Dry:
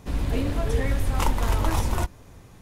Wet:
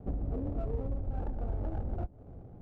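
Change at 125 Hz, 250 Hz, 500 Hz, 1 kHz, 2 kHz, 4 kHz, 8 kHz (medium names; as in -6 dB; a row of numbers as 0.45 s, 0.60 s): -9.5 dB, -9.5 dB, -10.0 dB, -17.0 dB, -27.5 dB, under -35 dB, under -40 dB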